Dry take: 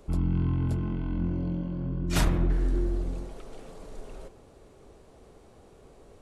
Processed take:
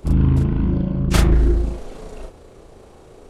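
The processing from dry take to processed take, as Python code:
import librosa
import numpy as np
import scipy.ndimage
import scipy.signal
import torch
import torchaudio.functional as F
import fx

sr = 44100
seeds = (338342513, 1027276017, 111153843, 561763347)

y = fx.stretch_grains(x, sr, factor=0.53, grain_ms=70.0)
y = fx.doubler(y, sr, ms=37.0, db=-3.0)
y = fx.doppler_dist(y, sr, depth_ms=0.38)
y = F.gain(torch.from_numpy(y), 8.5).numpy()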